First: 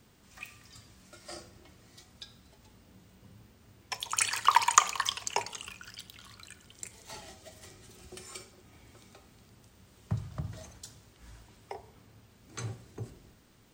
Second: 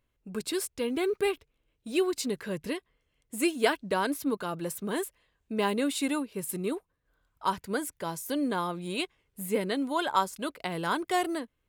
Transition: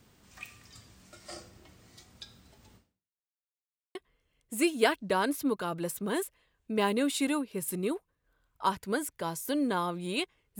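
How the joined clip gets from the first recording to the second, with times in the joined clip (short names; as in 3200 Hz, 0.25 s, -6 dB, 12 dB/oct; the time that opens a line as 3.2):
first
2.76–3.39 fade out exponential
3.39–3.95 mute
3.95 switch to second from 2.76 s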